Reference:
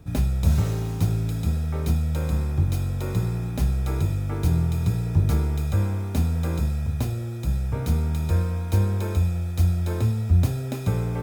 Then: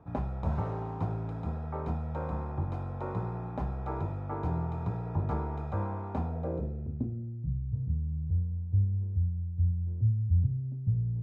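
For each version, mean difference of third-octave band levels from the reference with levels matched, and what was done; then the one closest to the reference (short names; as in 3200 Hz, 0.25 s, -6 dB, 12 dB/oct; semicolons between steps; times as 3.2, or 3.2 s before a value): 11.0 dB: tilt +2.5 dB/oct; low-pass sweep 940 Hz -> 120 Hz, 6.18–7.61; gain -3 dB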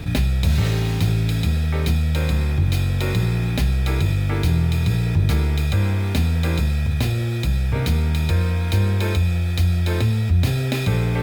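3.5 dB: band shelf 2800 Hz +9 dB; fast leveller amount 50%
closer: second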